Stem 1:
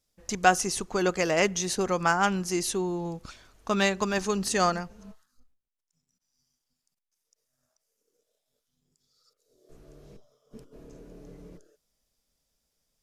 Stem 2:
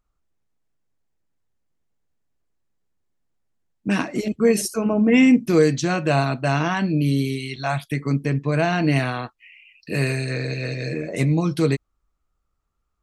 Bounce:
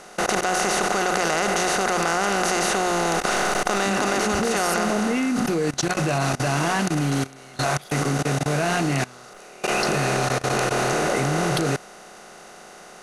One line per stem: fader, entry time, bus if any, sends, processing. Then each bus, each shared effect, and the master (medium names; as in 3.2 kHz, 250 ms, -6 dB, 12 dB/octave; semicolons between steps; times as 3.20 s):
+1.0 dB, 0.00 s, no send, spectral levelling over time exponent 0.2
-0.5 dB, 0.00 s, no send, swell ahead of each attack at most 30 dB/s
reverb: none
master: hum notches 60/120/180 Hz; level held to a coarse grid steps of 22 dB